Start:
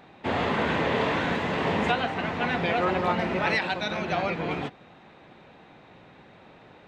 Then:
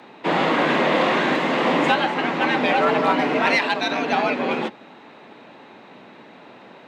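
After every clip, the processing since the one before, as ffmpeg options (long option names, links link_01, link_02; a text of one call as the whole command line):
ffmpeg -i in.wav -filter_complex "[0:a]afreqshift=78,asplit=2[link_01][link_02];[link_02]asoftclip=type=hard:threshold=-21dB,volume=-9dB[link_03];[link_01][link_03]amix=inputs=2:normalize=0,volume=4dB" out.wav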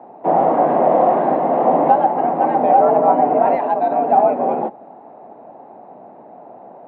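ffmpeg -i in.wav -af "lowpass=frequency=730:width_type=q:width=4.9,volume=-1dB" out.wav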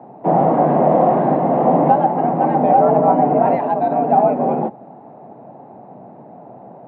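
ffmpeg -i in.wav -af "equalizer=frequency=130:width=0.88:gain=15,volume=-1.5dB" out.wav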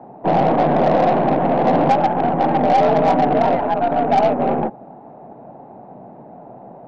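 ffmpeg -i in.wav -af "asoftclip=type=tanh:threshold=-7dB,aeval=exprs='0.447*(cos(1*acos(clip(val(0)/0.447,-1,1)))-cos(1*PI/2))+0.0282*(cos(6*acos(clip(val(0)/0.447,-1,1)))-cos(6*PI/2))':channel_layout=same" out.wav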